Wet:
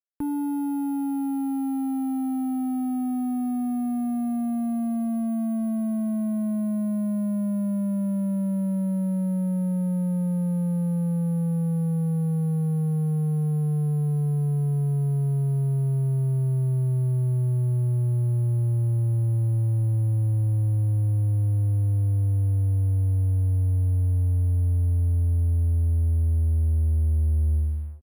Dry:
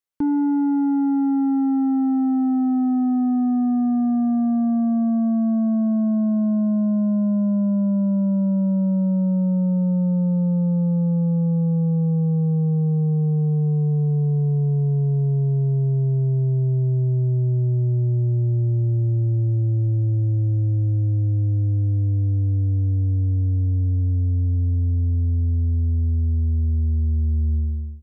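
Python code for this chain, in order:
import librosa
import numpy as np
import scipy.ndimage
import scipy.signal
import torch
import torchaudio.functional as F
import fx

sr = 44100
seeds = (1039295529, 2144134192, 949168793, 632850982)

y = fx.peak_eq(x, sr, hz=330.0, db=-6.5, octaves=2.7)
y = fx.cheby_harmonics(y, sr, harmonics=(7,), levels_db=(-31,), full_scale_db=-14.5)
y = np.sign(y) * np.maximum(np.abs(y) - 10.0 ** (-54.0 / 20.0), 0.0)
y = np.repeat(scipy.signal.resample_poly(y, 1, 4), 4)[:len(y)]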